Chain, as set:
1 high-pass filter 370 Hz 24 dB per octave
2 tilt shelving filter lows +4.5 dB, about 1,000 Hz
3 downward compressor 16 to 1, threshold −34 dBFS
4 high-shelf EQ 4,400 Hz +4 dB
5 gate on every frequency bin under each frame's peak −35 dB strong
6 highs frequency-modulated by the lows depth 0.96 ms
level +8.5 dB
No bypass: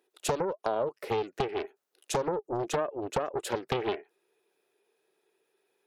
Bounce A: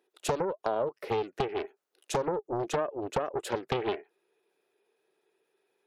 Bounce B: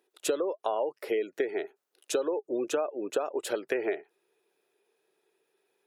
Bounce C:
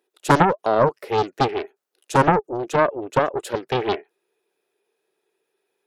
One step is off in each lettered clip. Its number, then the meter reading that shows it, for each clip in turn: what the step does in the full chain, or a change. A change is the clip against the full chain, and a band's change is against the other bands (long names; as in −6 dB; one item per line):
4, 8 kHz band −3.0 dB
6, 1 kHz band −6.0 dB
3, average gain reduction 8.5 dB